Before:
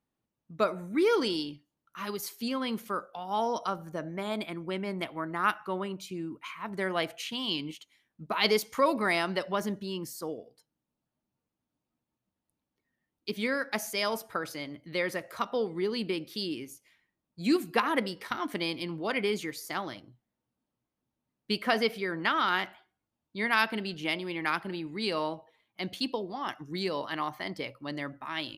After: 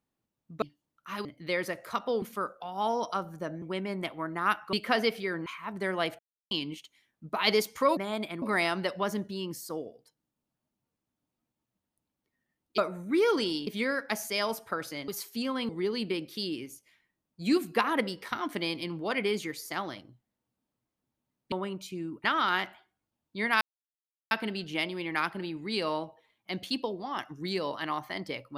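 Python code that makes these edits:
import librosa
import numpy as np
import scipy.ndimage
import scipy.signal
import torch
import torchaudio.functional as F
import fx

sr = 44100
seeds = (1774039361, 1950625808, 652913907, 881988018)

y = fx.edit(x, sr, fx.move(start_s=0.62, length_s=0.89, to_s=13.3),
    fx.swap(start_s=2.14, length_s=0.61, other_s=14.71, other_length_s=0.97),
    fx.move(start_s=4.15, length_s=0.45, to_s=8.94),
    fx.swap(start_s=5.71, length_s=0.72, other_s=21.51, other_length_s=0.73),
    fx.silence(start_s=7.16, length_s=0.32),
    fx.insert_silence(at_s=23.61, length_s=0.7), tone=tone)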